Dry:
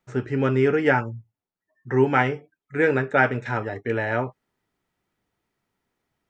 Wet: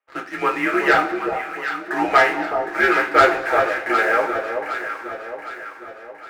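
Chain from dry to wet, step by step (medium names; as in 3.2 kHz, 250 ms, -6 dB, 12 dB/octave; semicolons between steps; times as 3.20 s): mistuned SSB -100 Hz 590–3000 Hz; waveshaping leveller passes 2; on a send: echo whose repeats swap between lows and highs 381 ms, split 1 kHz, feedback 69%, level -5 dB; on the sum: two-slope reverb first 0.23 s, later 1.9 s, from -18 dB, DRR -1 dB; trim -1 dB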